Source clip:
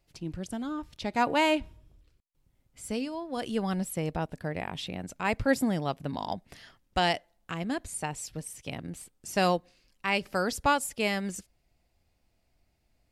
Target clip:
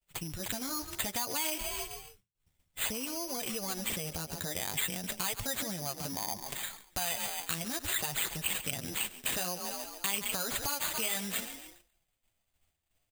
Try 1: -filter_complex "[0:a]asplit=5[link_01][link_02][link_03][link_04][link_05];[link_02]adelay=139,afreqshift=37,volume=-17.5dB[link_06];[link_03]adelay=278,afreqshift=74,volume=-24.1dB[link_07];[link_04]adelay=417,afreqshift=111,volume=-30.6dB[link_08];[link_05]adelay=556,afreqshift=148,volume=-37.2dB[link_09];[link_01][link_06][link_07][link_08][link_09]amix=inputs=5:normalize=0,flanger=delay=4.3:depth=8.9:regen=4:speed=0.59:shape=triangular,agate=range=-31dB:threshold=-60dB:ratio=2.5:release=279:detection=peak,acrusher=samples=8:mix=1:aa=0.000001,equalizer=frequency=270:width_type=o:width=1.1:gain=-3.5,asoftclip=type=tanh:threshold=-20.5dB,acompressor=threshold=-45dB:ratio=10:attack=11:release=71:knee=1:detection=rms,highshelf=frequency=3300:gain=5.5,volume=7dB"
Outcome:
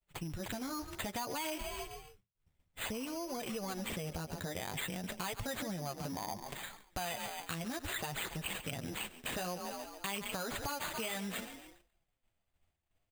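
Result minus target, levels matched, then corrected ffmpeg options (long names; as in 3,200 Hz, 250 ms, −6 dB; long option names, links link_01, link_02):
soft clipping: distortion +15 dB; 8,000 Hz band −4.0 dB
-filter_complex "[0:a]asplit=5[link_01][link_02][link_03][link_04][link_05];[link_02]adelay=139,afreqshift=37,volume=-17.5dB[link_06];[link_03]adelay=278,afreqshift=74,volume=-24.1dB[link_07];[link_04]adelay=417,afreqshift=111,volume=-30.6dB[link_08];[link_05]adelay=556,afreqshift=148,volume=-37.2dB[link_09];[link_01][link_06][link_07][link_08][link_09]amix=inputs=5:normalize=0,flanger=delay=4.3:depth=8.9:regen=4:speed=0.59:shape=triangular,agate=range=-31dB:threshold=-60dB:ratio=2.5:release=279:detection=peak,acrusher=samples=8:mix=1:aa=0.000001,equalizer=frequency=270:width_type=o:width=1.1:gain=-3.5,asoftclip=type=tanh:threshold=-11.5dB,acompressor=threshold=-45dB:ratio=10:attack=11:release=71:knee=1:detection=rms,highshelf=frequency=3300:gain=17.5,volume=7dB"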